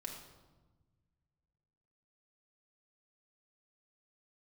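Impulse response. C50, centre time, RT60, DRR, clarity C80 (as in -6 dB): 4.5 dB, 38 ms, 1.2 s, -0.5 dB, 6.5 dB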